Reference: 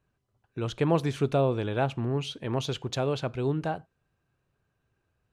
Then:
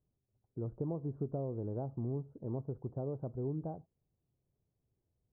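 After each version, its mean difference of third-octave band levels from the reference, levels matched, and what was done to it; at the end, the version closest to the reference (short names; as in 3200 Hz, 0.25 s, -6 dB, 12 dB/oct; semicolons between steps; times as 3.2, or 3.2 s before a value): 10.0 dB: compressor, threshold -26 dBFS, peak gain reduction 8 dB; Gaussian blur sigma 12 samples; gain -5.5 dB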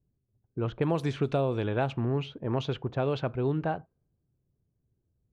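3.0 dB: low-pass opened by the level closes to 310 Hz, open at -20.5 dBFS; compressor 4:1, threshold -25 dBFS, peak gain reduction 6.5 dB; gain +1.5 dB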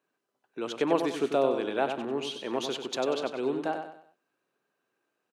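6.5 dB: HPF 250 Hz 24 dB/oct; feedback echo 95 ms, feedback 37%, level -7 dB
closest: second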